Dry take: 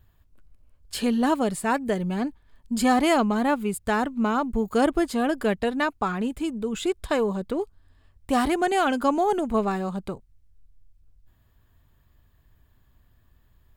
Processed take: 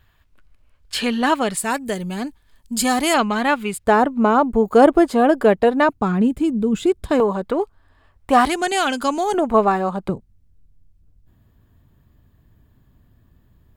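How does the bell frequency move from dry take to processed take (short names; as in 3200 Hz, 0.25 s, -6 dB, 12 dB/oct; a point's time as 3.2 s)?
bell +11.5 dB 2.9 oct
2200 Hz
from 1.57 s 12000 Hz
from 3.14 s 2500 Hz
from 3.84 s 600 Hz
from 5.89 s 180 Hz
from 7.2 s 1000 Hz
from 8.45 s 5700 Hz
from 9.34 s 860 Hz
from 10.09 s 200 Hz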